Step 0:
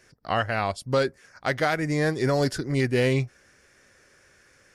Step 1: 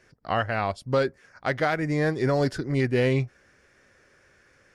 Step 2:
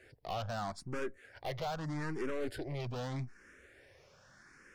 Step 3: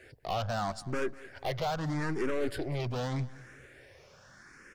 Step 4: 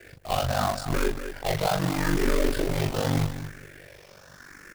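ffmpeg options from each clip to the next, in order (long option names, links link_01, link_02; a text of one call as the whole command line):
ffmpeg -i in.wav -af "highshelf=frequency=5200:gain=-11.5" out.wav
ffmpeg -i in.wav -filter_complex "[0:a]acompressor=threshold=-35dB:ratio=2,aeval=exprs='(tanh(70.8*val(0)+0.6)-tanh(0.6))/70.8':channel_layout=same,asplit=2[link_01][link_02];[link_02]afreqshift=0.81[link_03];[link_01][link_03]amix=inputs=2:normalize=1,volume=5dB" out.wav
ffmpeg -i in.wav -af "aecho=1:1:197|394|591:0.106|0.0413|0.0161,volume=5.5dB" out.wav
ffmpeg -i in.wav -af "acrusher=bits=2:mode=log:mix=0:aa=0.000001,aecho=1:1:37.9|242:0.708|0.282,aeval=exprs='val(0)*sin(2*PI*24*n/s)':channel_layout=same,volume=7.5dB" out.wav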